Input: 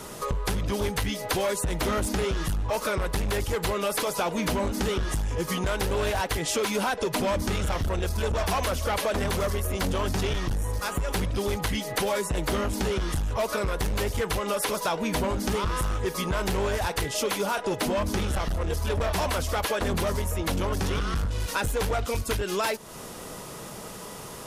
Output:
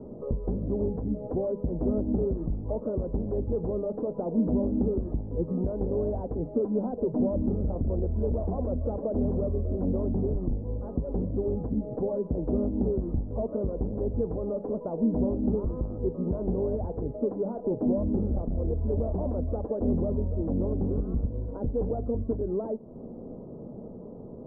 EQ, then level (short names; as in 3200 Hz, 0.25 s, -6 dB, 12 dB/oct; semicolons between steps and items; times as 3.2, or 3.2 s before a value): inverse Chebyshev low-pass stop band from 2600 Hz, stop band 70 dB; bell 240 Hz +8 dB 0.39 oct; notches 50/100/150/200 Hz; 0.0 dB